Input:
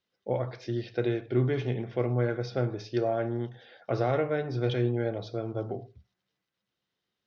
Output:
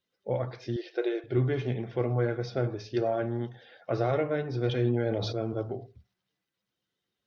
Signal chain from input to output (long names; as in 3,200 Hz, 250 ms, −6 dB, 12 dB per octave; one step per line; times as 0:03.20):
spectral magnitudes quantised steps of 15 dB
0:00.76–0:01.24: linear-phase brick-wall high-pass 300 Hz
0:04.76–0:05.62: level that may fall only so fast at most 23 dB per second